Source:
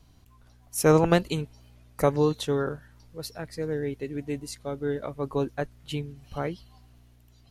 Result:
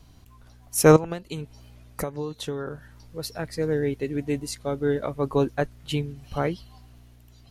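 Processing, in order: 0.96–3.32 s: compression 16:1, threshold -32 dBFS, peak gain reduction 18.5 dB; trim +5 dB

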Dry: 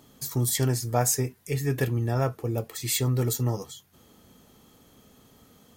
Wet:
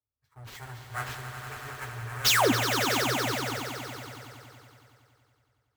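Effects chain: one-sided wavefolder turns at -21.5 dBFS; high-pass 60 Hz; level-controlled noise filter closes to 620 Hz, open at -26.5 dBFS; FFT filter 100 Hz 0 dB, 170 Hz -23 dB, 1.6 kHz +6 dB, 6.6 kHz -15 dB, 12 kHz -4 dB; painted sound fall, 2.24–2.52 s, 210–7700 Hz -21 dBFS; sample-rate reducer 9.7 kHz, jitter 20%; comb of notches 170 Hz; on a send: echo with a slow build-up 93 ms, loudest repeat 5, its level -7 dB; on the sum: three bands expanded up and down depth 70%; trim -4 dB

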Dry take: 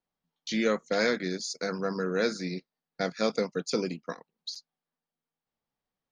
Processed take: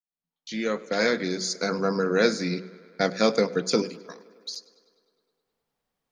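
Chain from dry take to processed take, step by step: fade-in on the opening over 1.57 s; 1.24–2.06 s: band-stop 1.8 kHz, Q 6.1; 3.82–4.54 s: pre-emphasis filter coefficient 0.8; de-hum 62.06 Hz, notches 10; tape echo 102 ms, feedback 78%, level -20.5 dB, low-pass 5.7 kHz; trim +6.5 dB

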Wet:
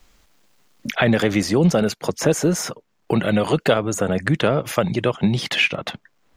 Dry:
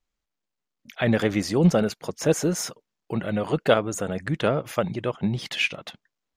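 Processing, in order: in parallel at -1 dB: peak limiter -15 dBFS, peak gain reduction 9 dB; on the sum: three bands compressed up and down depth 70%

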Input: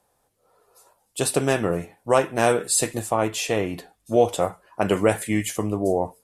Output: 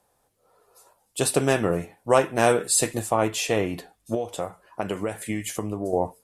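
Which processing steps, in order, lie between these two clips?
4.14–5.93 s: compression 12:1, threshold -24 dBFS, peak gain reduction 13 dB

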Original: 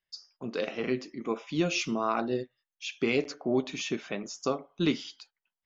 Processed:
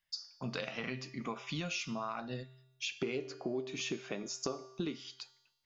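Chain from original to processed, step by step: peaking EQ 370 Hz -14 dB 0.93 oct, from 2.92 s +3 dB; compression 10:1, threshold -39 dBFS, peak gain reduction 19.5 dB; feedback comb 130 Hz, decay 0.97 s, harmonics odd, mix 70%; trim +14 dB

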